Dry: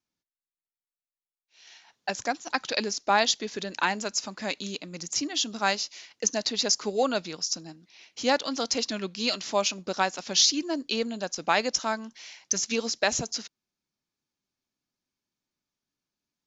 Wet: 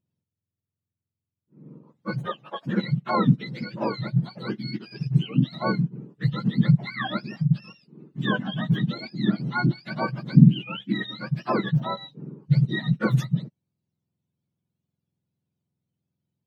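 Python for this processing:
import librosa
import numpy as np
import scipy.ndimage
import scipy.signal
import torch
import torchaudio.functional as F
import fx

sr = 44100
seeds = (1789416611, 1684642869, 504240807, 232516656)

y = fx.octave_mirror(x, sr, pivot_hz=930.0)
y = fx.highpass(y, sr, hz=fx.line((2.25, 250.0), (2.65, 1000.0)), slope=12, at=(2.25, 2.65), fade=0.02)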